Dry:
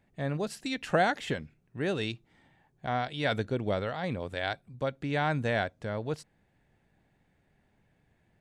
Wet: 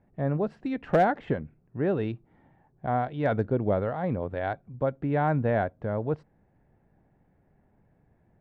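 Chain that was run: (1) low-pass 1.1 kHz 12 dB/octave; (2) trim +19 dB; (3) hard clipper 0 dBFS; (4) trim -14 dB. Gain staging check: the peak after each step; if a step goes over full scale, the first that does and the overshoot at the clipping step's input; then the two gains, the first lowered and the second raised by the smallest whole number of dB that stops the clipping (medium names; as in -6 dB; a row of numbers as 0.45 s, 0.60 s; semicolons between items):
-12.5 dBFS, +6.5 dBFS, 0.0 dBFS, -14.0 dBFS; step 2, 6.5 dB; step 2 +12 dB, step 4 -7 dB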